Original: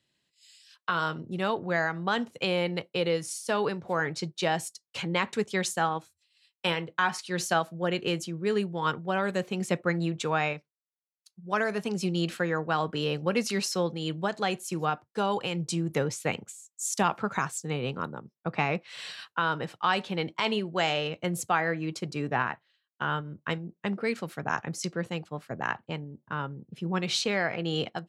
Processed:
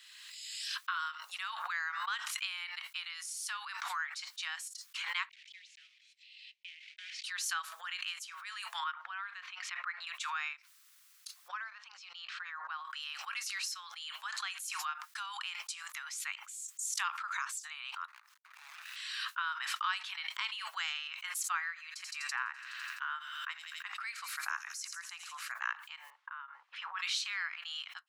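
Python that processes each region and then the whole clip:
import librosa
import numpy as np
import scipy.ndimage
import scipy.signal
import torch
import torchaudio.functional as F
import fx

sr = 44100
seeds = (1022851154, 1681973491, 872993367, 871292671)

y = fx.chain(x, sr, fx.block_float(bits=3),
    fx.steep_highpass(hz=2200.0, slope=48),
    fx.spacing_loss(db_at_10k=42), at=(5.29, 7.24))
y = fx.chain(y, sr, fx.air_absorb(metres=250.0),
    fx.band_widen(depth_pct=40), at=(8.84, 10.07))
y = fx.chain(y, sr, fx.lowpass(hz=5300.0, slope=24),
    fx.tilt_shelf(db=9.5, hz=810.0), at=(11.48, 12.85))
y = fx.chain(y, sr, fx.median_filter(points=41),
    fx.over_compress(threshold_db=-39.0, ratio=-0.5), at=(18.08, 18.96))
y = fx.chain(y, sr, fx.peak_eq(hz=3300.0, db=-4.5, octaves=0.4),
    fx.echo_wet_highpass(ms=84, feedback_pct=61, hz=4900.0, wet_db=-9.0), at=(21.45, 25.52))
y = fx.chain(y, sr, fx.bandpass_edges(low_hz=500.0, high_hz=3000.0),
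    fx.high_shelf(hz=2200.0, db=-10.0), at=(26.1, 26.99))
y = scipy.signal.sosfilt(scipy.signal.butter(8, 1100.0, 'highpass', fs=sr, output='sos'), y)
y = fx.pre_swell(y, sr, db_per_s=28.0)
y = y * librosa.db_to_amplitude(-6.5)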